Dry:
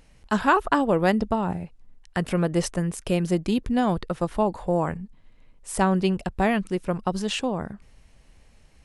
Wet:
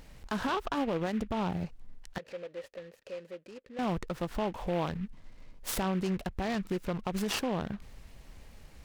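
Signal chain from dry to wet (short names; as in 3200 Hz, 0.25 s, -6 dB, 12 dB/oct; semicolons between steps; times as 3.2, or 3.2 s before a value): compressor 4:1, threshold -31 dBFS, peak gain reduction 14 dB; limiter -25.5 dBFS, peak gain reduction 10.5 dB; 2.18–3.79 vowel filter e; noise-modulated delay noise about 1800 Hz, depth 0.048 ms; gain +3.5 dB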